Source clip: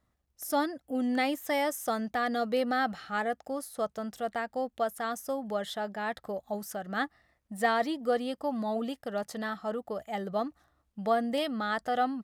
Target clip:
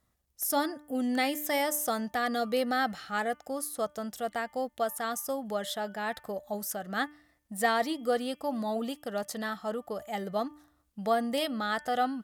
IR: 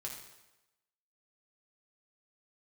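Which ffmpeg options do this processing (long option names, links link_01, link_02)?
-af "aemphasis=mode=production:type=cd,bandreject=frequency=297.3:width_type=h:width=4,bandreject=frequency=594.6:width_type=h:width=4,bandreject=frequency=891.9:width_type=h:width=4,bandreject=frequency=1189.2:width_type=h:width=4,bandreject=frequency=1486.5:width_type=h:width=4,bandreject=frequency=1783.8:width_type=h:width=4,bandreject=frequency=2081.1:width_type=h:width=4,bandreject=frequency=2378.4:width_type=h:width=4,bandreject=frequency=2675.7:width_type=h:width=4,bandreject=frequency=2973:width_type=h:width=4,bandreject=frequency=3270.3:width_type=h:width=4"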